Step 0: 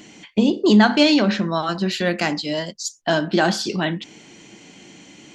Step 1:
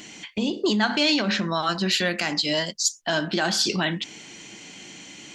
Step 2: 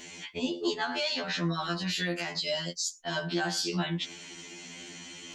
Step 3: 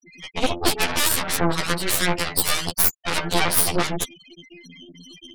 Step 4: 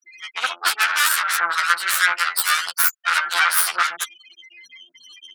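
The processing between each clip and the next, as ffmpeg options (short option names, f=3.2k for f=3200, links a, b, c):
-af "lowshelf=f=260:g=4.5,alimiter=limit=-12.5dB:level=0:latency=1:release=136,tiltshelf=f=850:g=-5.5"
-af "areverse,acompressor=mode=upward:threshold=-45dB:ratio=2.5,areverse,alimiter=limit=-18dB:level=0:latency=1:release=210,afftfilt=real='re*2*eq(mod(b,4),0)':imag='im*2*eq(mod(b,4),0)':win_size=2048:overlap=0.75"
-af "afftfilt=real='re*gte(hypot(re,im),0.02)':imag='im*gte(hypot(re,im),0.02)':win_size=1024:overlap=0.75,aeval=exprs='0.141*(cos(1*acos(clip(val(0)/0.141,-1,1)))-cos(1*PI/2))+0.0501*(cos(6*acos(clip(val(0)/0.141,-1,1)))-cos(6*PI/2))+0.0447*(cos(7*acos(clip(val(0)/0.141,-1,1)))-cos(7*PI/2))':c=same,aexciter=amount=1.6:drive=9.7:freq=9.2k,volume=6dB"
-af "highpass=f=1.4k:t=q:w=4.9"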